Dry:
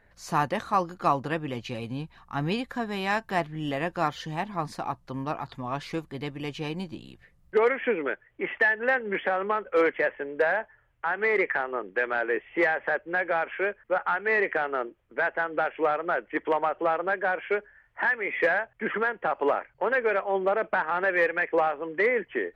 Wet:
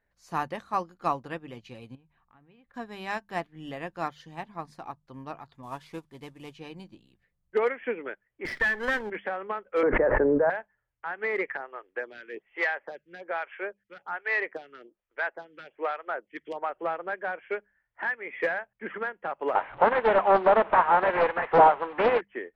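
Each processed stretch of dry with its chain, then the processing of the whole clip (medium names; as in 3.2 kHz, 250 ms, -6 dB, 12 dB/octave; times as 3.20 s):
1.95–2.74 s: low-pass 3 kHz 24 dB/octave + compression 10:1, threshold -40 dBFS
5.63–6.54 s: CVSD coder 64 kbps + small resonant body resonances 950/3400 Hz, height 8 dB
8.45–9.10 s: comb filter that takes the minimum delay 0.54 ms + level flattener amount 50%
9.83–10.50 s: low-pass 1.3 kHz 24 dB/octave + tilt EQ -1.5 dB/octave + level flattener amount 100%
11.57–16.70 s: peaking EQ 5.3 kHz +12 dB 1.7 oct + lamp-driven phase shifter 1.2 Hz
19.55–22.21 s: one-bit delta coder 16 kbps, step -34 dBFS + peaking EQ 920 Hz +15 dB 1.4 oct + loudspeaker Doppler distortion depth 0.48 ms
whole clip: hum notches 50/100/150/200 Hz; upward expansion 1.5:1, over -45 dBFS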